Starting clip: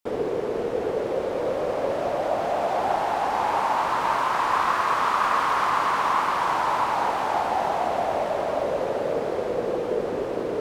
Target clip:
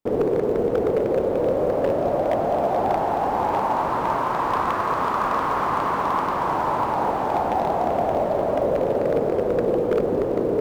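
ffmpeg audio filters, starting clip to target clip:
-af "acrusher=bits=6:mode=log:mix=0:aa=0.000001,tiltshelf=f=970:g=9,aeval=exprs='0.224*(abs(mod(val(0)/0.224+3,4)-2)-1)':c=same"

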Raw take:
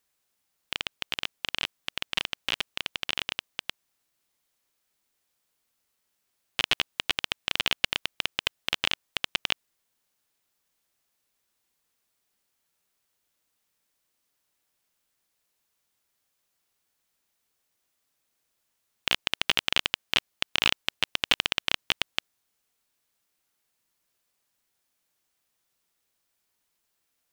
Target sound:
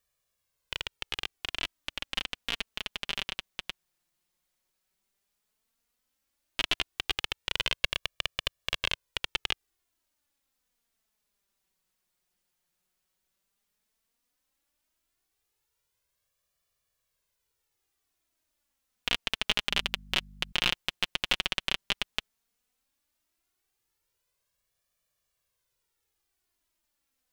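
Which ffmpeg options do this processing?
-filter_complex "[0:a]lowshelf=f=120:g=9,asettb=1/sr,asplit=3[s0][s1][s2];[s0]atrim=end=19.694[s3];[s1]atrim=start=19.69:end=20.52,asetpts=PTS-STARTPTS,afade=t=in:d=0.004:c=qsin,afade=t=out:st=0.826:d=0.004:c=qsin,aeval=exprs='val(0)+0.00562*(sin(2*PI*50*n/s)+sin(2*PI*2*50*n/s)/2+sin(2*PI*3*50*n/s)/3+sin(2*PI*4*50*n/s)/4+sin(2*PI*5*50*n/s)/5)':c=same[s4];[s2]atrim=start=20.516[s5];[s3][s4]acrossfade=d=0.004:c1=hsin:c2=qsin[s6];[s6][s5]acrossfade=d=0.004:c1=qsin:c2=hsin,flanger=delay=1.7:depth=3.9:regen=13:speed=0.12:shape=sinusoidal"

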